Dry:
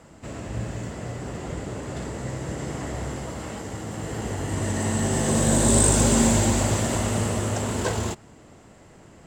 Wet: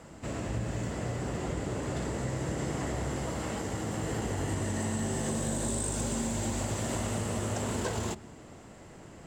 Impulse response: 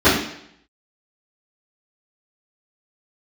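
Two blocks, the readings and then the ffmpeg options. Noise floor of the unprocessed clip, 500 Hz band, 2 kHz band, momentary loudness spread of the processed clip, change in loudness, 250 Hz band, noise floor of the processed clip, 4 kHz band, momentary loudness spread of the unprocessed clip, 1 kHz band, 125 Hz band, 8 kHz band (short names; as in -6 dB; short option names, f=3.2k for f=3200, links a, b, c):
-50 dBFS, -7.0 dB, -7.0 dB, 7 LU, -8.5 dB, -8.0 dB, -50 dBFS, -8.5 dB, 16 LU, -7.0 dB, -7.5 dB, -11.0 dB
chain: -filter_complex "[0:a]asplit=2[a][b];[1:a]atrim=start_sample=2205[c];[b][c]afir=irnorm=-1:irlink=0,volume=-48dB[d];[a][d]amix=inputs=2:normalize=0,acompressor=threshold=-28dB:ratio=16"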